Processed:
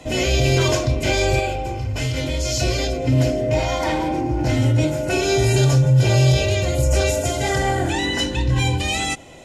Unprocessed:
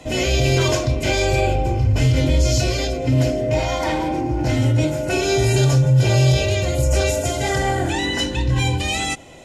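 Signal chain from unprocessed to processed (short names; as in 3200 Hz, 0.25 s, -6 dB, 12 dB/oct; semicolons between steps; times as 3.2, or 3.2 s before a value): 1.39–2.61 low shelf 500 Hz -8.5 dB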